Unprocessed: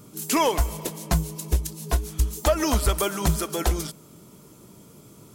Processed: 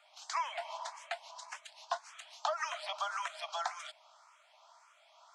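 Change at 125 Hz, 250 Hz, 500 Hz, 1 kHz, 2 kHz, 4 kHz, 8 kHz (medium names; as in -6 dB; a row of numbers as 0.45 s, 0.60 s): under -40 dB, under -40 dB, -17.0 dB, -7.5 dB, -7.0 dB, -10.5 dB, -19.0 dB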